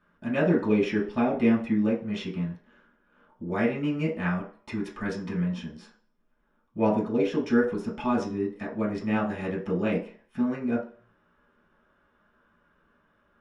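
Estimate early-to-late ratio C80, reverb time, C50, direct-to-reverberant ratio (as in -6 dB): 12.5 dB, 0.45 s, 8.0 dB, -7.0 dB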